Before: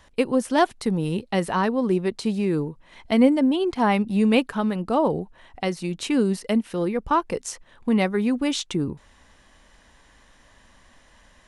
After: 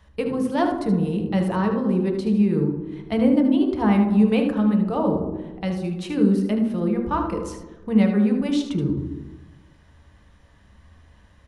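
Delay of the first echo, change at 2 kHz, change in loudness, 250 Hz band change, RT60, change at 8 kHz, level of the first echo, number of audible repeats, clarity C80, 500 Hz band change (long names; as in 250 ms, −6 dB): 76 ms, −4.5 dB, +1.5 dB, +3.0 dB, 1.1 s, can't be measured, −9.0 dB, 1, 8.0 dB, −1.0 dB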